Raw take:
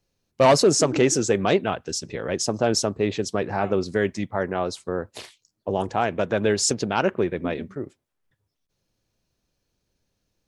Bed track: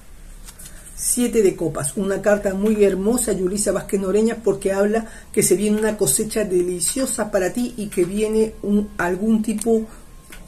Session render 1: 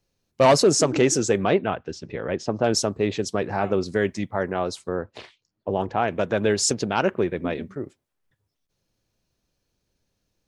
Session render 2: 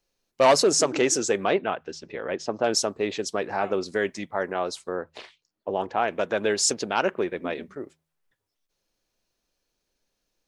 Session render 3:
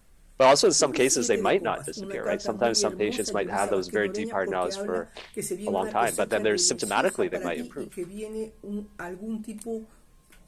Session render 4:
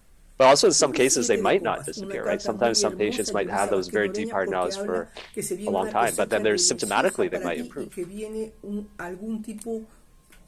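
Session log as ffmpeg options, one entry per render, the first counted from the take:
-filter_complex "[0:a]asettb=1/sr,asplit=3[a][b][c];[a]atrim=end=1.474[d];[b]atrim=start=1.47:end=2.64,asetpts=PTS-STARTPTS,afade=t=in:d=0.004:c=qsin,afade=t=out:st=1.166:d=0.004:c=qsin,lowpass=2.8k[e];[c]atrim=start=2.636[f];[d][e]acrossfade=d=0.004:c1=hsin:c2=qsin[g];[g][f]acrossfade=d=0.004:c1=qsin:c2=hsin,asettb=1/sr,asplit=3[h][i][j];[h]atrim=end=4.954[k];[i]atrim=start=4.95:end=6.08,asetpts=PTS-STARTPTS,afade=t=in:d=0.004:c=qsin,afade=t=out:st=1.126:d=0.004:c=qsin,lowpass=3.3k[l];[j]atrim=start=6.076[m];[k][l]acrossfade=d=0.004:c1=hsin:c2=qsin[n];[n][m]acrossfade=d=0.004:c1=qsin:c2=hsin"
-af "equalizer=f=100:w=0.58:g=-14.5,bandreject=f=79.47:t=h:w=4,bandreject=f=158.94:t=h:w=4"
-filter_complex "[1:a]volume=-15.5dB[a];[0:a][a]amix=inputs=2:normalize=0"
-af "volume=2dB"

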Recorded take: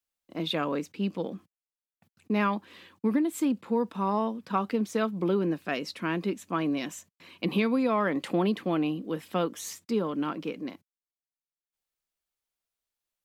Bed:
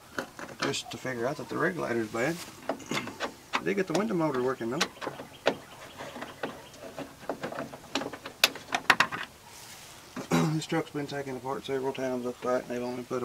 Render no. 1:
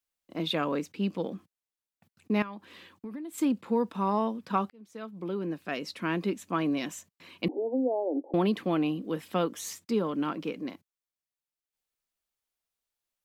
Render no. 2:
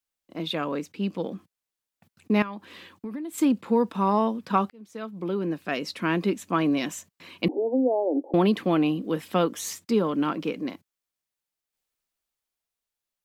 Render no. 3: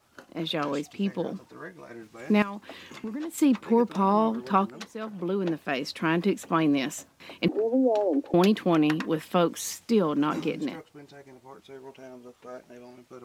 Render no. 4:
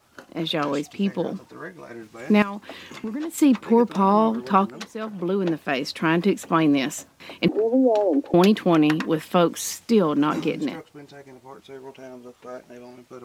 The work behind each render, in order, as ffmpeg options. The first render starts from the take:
-filter_complex "[0:a]asettb=1/sr,asplit=3[a][b][c];[a]atrim=end=2.424[d];[b]atrim=start=2.42:end=3.38,asetpts=PTS-STARTPTS,afade=t=in:d=0.004:c=qsin,afade=t=out:st=0.956:d=0.004:c=qsin,acompressor=threshold=-41dB:ratio=3:attack=3.2:release=140:knee=1:detection=peak[e];[c]atrim=start=3.376[f];[d][e]acrossfade=d=0.004:c1=hsin:c2=qsin[g];[g][f]acrossfade=d=0.004:c1=qsin:c2=hsin,asettb=1/sr,asplit=3[h][i][j];[h]atrim=end=7.484[k];[i]atrim=start=7.48:end=8.34,asetpts=PTS-STARTPTS,afade=t=in:d=0.004:c=qsin,afade=t=out:st=0.856:d=0.004:c=qsin,asuperpass=centerf=470:order=20:qfactor=0.79[l];[j]atrim=start=8.336[m];[k][l]acrossfade=d=0.004:c1=hsin:c2=qsin[n];[n][m]acrossfade=d=0.004:c1=qsin:c2=hsin,asplit=2[o][p];[o]atrim=end=4.7,asetpts=PTS-STARTPTS,afade=t=out:st=4.696:d=0.004:c=hsin[q];[p]atrim=start=4.7,asetpts=PTS-STARTPTS,afade=t=in:d=1.44[r];[q][r]concat=n=2:v=0:a=1"
-af "dynaudnorm=f=250:g=11:m=5dB"
-filter_complex "[1:a]volume=-13.5dB[a];[0:a][a]amix=inputs=2:normalize=0"
-af "volume=4.5dB"

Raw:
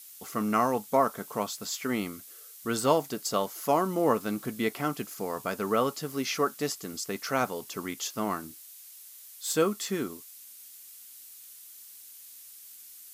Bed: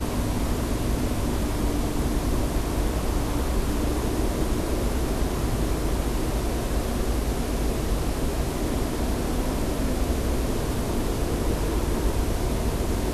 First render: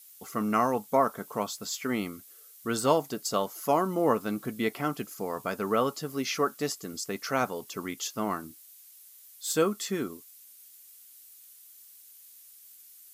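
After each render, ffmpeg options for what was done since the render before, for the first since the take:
-af "afftdn=nr=6:nf=-49"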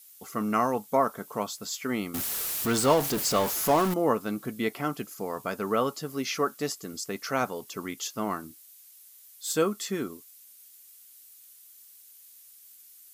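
-filter_complex "[0:a]asettb=1/sr,asplit=3[a][b][c];[a]atrim=end=2.144[d];[b]atrim=start=2.14:end=3.94,asetpts=PTS-STARTPTS,afade=t=in:d=0.004:c=qsin,afade=t=out:st=1.796:d=0.004:c=qsin,aeval=exprs='val(0)+0.5*0.0501*sgn(val(0))':c=same[e];[c]atrim=start=3.936[f];[d][e]acrossfade=d=0.004:c1=hsin:c2=qsin[g];[g][f]acrossfade=d=0.004:c1=qsin:c2=hsin"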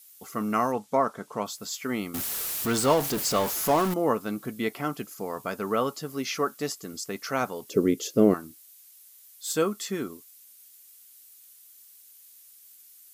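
-filter_complex "[0:a]asettb=1/sr,asplit=3[a][b][c];[a]atrim=end=0.724[d];[b]atrim=start=0.72:end=1.46,asetpts=PTS-STARTPTS,afade=t=in:d=0.004:c=qsin,afade=t=out:st=0.736:d=0.004:c=qsin,lowpass=7.9k[e];[c]atrim=start=1.456[f];[d][e]acrossfade=d=0.004:c1=hsin:c2=qsin[g];[g][f]acrossfade=d=0.004:c1=qsin:c2=hsin,asettb=1/sr,asplit=3[h][i][j];[h]atrim=end=7.694[k];[i]atrim=start=7.69:end=8.34,asetpts=PTS-STARTPTS,afade=t=in:d=0.004:c=qsin,afade=t=out:st=0.646:d=0.004:c=qsin,lowshelf=f=660:t=q:w=3:g=11[l];[j]atrim=start=8.336[m];[k][l]acrossfade=d=0.004:c1=hsin:c2=qsin[n];[n][m]acrossfade=d=0.004:c1=qsin:c2=hsin"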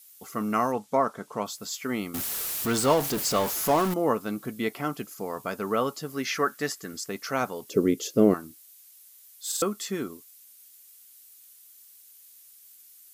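-filter_complex "[0:a]asettb=1/sr,asplit=3[a][b][c];[a]atrim=end=6.164[d];[b]atrim=start=6.16:end=7.07,asetpts=PTS-STARTPTS,afade=t=in:d=0.004:c=qsin,afade=t=out:st=0.906:d=0.004:c=qsin,equalizer=f=1.7k:w=2.6:g=10.5[e];[c]atrim=start=7.066[f];[d][e]acrossfade=d=0.004:c1=hsin:c2=qsin[g];[g][f]acrossfade=d=0.004:c1=qsin:c2=hsin,asplit=4[h][i][j][k];[h]atrim=end=9.522[l];[i]atrim=start=9.468:end=9.522[m];[j]atrim=start=9.468:end=9.522[n];[k]atrim=start=9.618[o];[l][m]acrossfade=d=0.004:c1=hsin:c2=hsin[p];[p][n]acrossfade=d=0.004:c1=hsin:c2=hsin[q];[q][o]acrossfade=d=0.004:c1=hsin:c2=hsin"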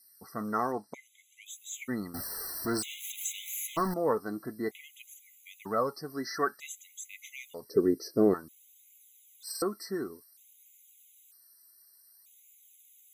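-af "flanger=delay=0.4:depth=2.6:regen=44:speed=0.56:shape=sinusoidal,afftfilt=real='re*gt(sin(2*PI*0.53*pts/sr)*(1-2*mod(floor(b*sr/1024/2000),2)),0)':imag='im*gt(sin(2*PI*0.53*pts/sr)*(1-2*mod(floor(b*sr/1024/2000),2)),0)':win_size=1024:overlap=0.75"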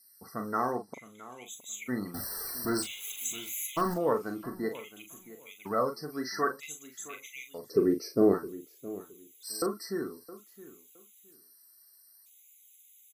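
-filter_complex "[0:a]asplit=2[a][b];[b]adelay=40,volume=-7.5dB[c];[a][c]amix=inputs=2:normalize=0,asplit=2[d][e];[e]adelay=666,lowpass=f=1.8k:p=1,volume=-16.5dB,asplit=2[f][g];[g]adelay=666,lowpass=f=1.8k:p=1,volume=0.22[h];[d][f][h]amix=inputs=3:normalize=0"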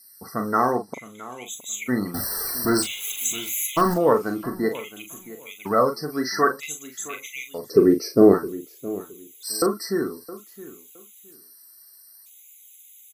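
-af "volume=9.5dB"

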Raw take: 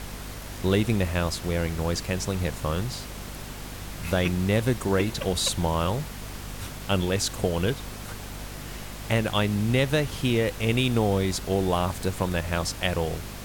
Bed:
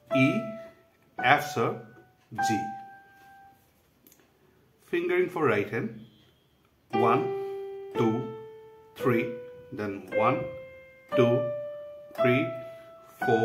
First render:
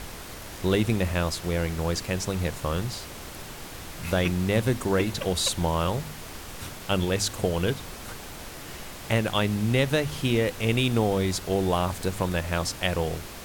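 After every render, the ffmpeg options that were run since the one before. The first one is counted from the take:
-af "bandreject=f=50:t=h:w=4,bandreject=f=100:t=h:w=4,bandreject=f=150:t=h:w=4,bandreject=f=200:t=h:w=4,bandreject=f=250:t=h:w=4"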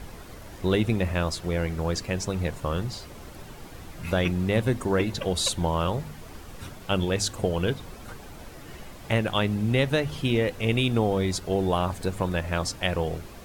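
-af "afftdn=nr=9:nf=-40"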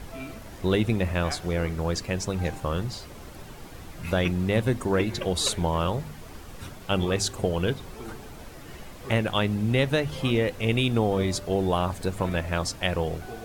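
-filter_complex "[1:a]volume=-16.5dB[a];[0:a][a]amix=inputs=2:normalize=0"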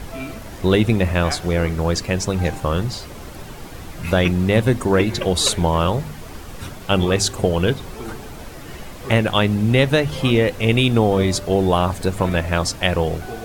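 -af "volume=7.5dB"

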